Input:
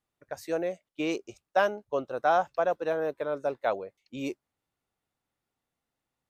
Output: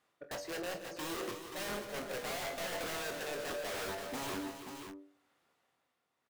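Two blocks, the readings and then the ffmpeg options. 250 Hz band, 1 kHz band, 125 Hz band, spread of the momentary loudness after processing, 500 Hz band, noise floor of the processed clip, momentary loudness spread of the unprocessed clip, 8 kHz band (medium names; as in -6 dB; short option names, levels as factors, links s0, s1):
-7.5 dB, -13.0 dB, -4.0 dB, 8 LU, -11.5 dB, -82 dBFS, 12 LU, no reading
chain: -filter_complex "[0:a]afftdn=nr=15:nf=-46,highshelf=f=2100:g=-5.5,bandreject=f=850:w=12,bandreject=f=97.1:t=h:w=4,bandreject=f=194.2:t=h:w=4,bandreject=f=291.3:t=h:w=4,bandreject=f=388.4:t=h:w=4,bandreject=f=485.5:t=h:w=4,bandreject=f=582.6:t=h:w=4,bandreject=f=679.7:t=h:w=4,areverse,acompressor=threshold=0.00631:ratio=4,areverse,tremolo=f=0.75:d=0.81,asplit=2[s0][s1];[s1]highpass=f=720:p=1,volume=56.2,asoftclip=type=tanh:threshold=0.0178[s2];[s0][s2]amix=inputs=2:normalize=0,lowpass=f=5100:p=1,volume=0.501,aeval=exprs='(mod(100*val(0)+1,2)-1)/100':c=same,asplit=2[s3][s4];[s4]adelay=24,volume=0.398[s5];[s3][s5]amix=inputs=2:normalize=0,aecho=1:1:45|113|135|174|331|533:0.188|0.106|0.158|0.266|0.335|0.422,volume=1.19"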